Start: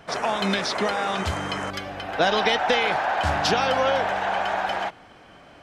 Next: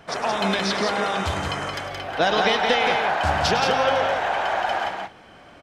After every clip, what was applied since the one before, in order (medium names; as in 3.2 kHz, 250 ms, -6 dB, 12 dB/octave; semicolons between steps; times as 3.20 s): multi-tap echo 104/173/204 ms -12/-4.5/-16.5 dB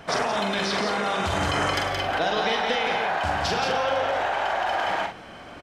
in parallel at +1.5 dB: compressor with a negative ratio -28 dBFS, ratio -0.5; on the sum: doubling 44 ms -5.5 dB; trim -6.5 dB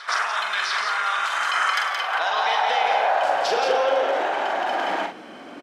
high-pass sweep 1.3 kHz -> 270 Hz, 1.82–4.59 s; reverse echo 701 ms -17.5 dB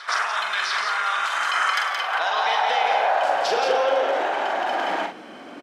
high-pass 89 Hz